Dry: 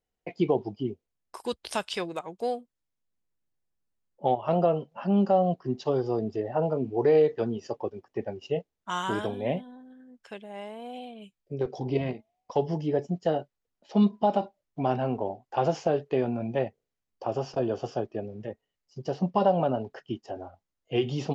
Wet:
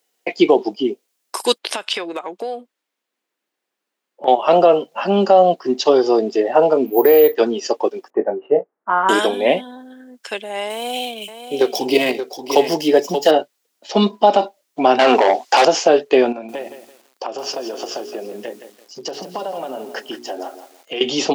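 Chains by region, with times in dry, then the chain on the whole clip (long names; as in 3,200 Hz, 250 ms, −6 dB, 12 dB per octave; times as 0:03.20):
0:01.58–0:04.28: bass and treble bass −2 dB, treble −14 dB + downward compressor, threshold −36 dBFS
0:06.86–0:07.35: high-frequency loss of the air 150 metres + bad sample-rate conversion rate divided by 3×, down none, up hold
0:08.10–0:09.09: inverse Chebyshev low-pass filter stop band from 4,700 Hz, stop band 60 dB + mains-hum notches 60/120 Hz + double-tracking delay 21 ms −8.5 dB
0:10.70–0:13.31: running median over 5 samples + high-shelf EQ 3,500 Hz +10 dB + single-tap delay 578 ms −10 dB
0:14.99–0:15.65: parametric band 5,400 Hz +7.5 dB 1.3 octaves + mid-hump overdrive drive 21 dB, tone 5,500 Hz, clips at −13.5 dBFS
0:16.32–0:21.01: mains-hum notches 60/120/180/240/300/360/420 Hz + downward compressor 12 to 1, threshold −36 dBFS + feedback echo at a low word length 168 ms, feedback 35%, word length 10 bits, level −10.5 dB
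whole clip: high-pass filter 270 Hz 24 dB per octave; high-shelf EQ 2,300 Hz +10.5 dB; boost into a limiter +14.5 dB; level −1 dB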